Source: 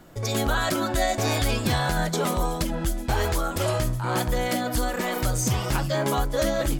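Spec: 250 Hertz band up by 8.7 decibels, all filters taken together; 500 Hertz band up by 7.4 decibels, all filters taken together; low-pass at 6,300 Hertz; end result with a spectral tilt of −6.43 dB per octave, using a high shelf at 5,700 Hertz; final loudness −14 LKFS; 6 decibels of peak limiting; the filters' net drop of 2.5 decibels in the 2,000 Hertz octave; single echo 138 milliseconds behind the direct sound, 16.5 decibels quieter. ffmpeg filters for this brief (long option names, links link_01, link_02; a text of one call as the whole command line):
ffmpeg -i in.wav -af "lowpass=6300,equalizer=frequency=250:width_type=o:gain=9,equalizer=frequency=500:width_type=o:gain=7,equalizer=frequency=2000:width_type=o:gain=-3,highshelf=frequency=5700:gain=-8.5,alimiter=limit=-13.5dB:level=0:latency=1,aecho=1:1:138:0.15,volume=9dB" out.wav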